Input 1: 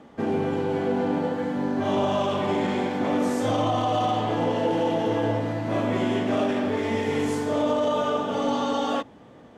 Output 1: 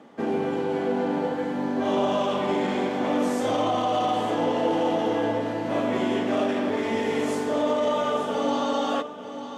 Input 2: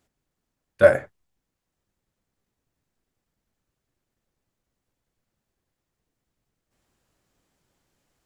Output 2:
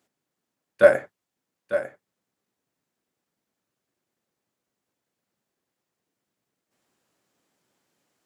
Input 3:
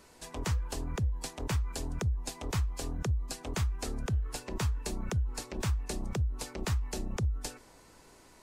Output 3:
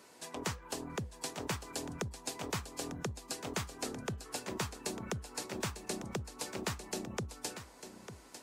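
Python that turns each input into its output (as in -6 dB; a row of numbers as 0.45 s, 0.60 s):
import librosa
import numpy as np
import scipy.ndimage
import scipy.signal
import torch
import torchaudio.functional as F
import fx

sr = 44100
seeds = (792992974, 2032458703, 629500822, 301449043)

p1 = scipy.signal.sosfilt(scipy.signal.butter(2, 190.0, 'highpass', fs=sr, output='sos'), x)
y = p1 + fx.echo_single(p1, sr, ms=899, db=-11.0, dry=0)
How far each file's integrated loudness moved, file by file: 0.0 LU, -2.5 LU, -5.0 LU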